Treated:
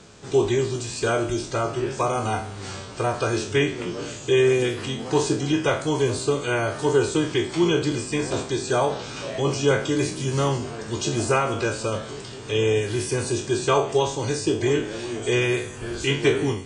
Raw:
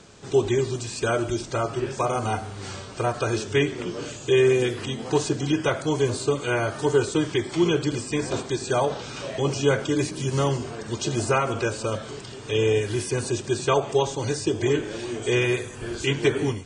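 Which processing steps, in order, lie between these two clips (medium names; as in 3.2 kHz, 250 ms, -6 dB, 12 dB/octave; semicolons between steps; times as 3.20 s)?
spectral sustain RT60 0.38 s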